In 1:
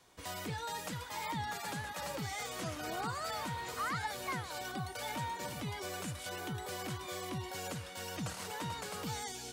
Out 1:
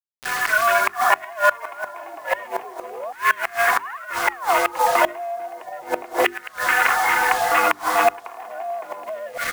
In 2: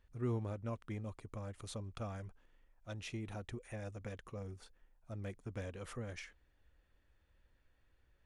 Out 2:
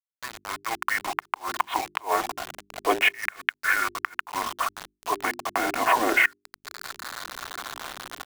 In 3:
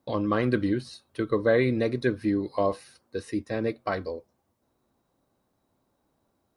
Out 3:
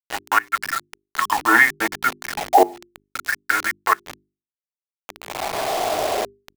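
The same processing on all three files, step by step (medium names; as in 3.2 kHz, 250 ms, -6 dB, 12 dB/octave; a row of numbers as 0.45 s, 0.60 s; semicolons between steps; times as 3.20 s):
local Wiener filter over 15 samples; recorder AGC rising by 18 dB/s; mistuned SSB -240 Hz 270–2900 Hz; comb 2.8 ms, depth 51%; dynamic bell 1.3 kHz, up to -5 dB, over -45 dBFS, Q 2.6; in parallel at +0.5 dB: compression 8:1, threshold -36 dBFS; on the sum: transient shaper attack -7 dB, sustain +2 dB; LFO high-pass saw down 0.32 Hz 570–1700 Hz; bit crusher 7-bit; inverted gate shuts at -19 dBFS, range -24 dB; hum notches 50/100/150/200/250/300/350/400 Hz; peak normalisation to -1.5 dBFS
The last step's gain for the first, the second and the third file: +15.0 dB, +11.0 dB, +16.5 dB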